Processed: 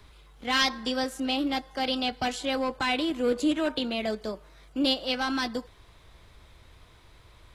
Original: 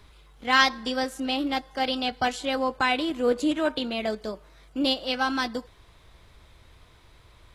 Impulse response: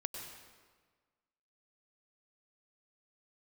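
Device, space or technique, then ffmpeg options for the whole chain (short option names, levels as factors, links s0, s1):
one-band saturation: -filter_complex "[0:a]acrossover=split=390|2300[s0][s1][s2];[s1]asoftclip=type=tanh:threshold=0.0501[s3];[s0][s3][s2]amix=inputs=3:normalize=0"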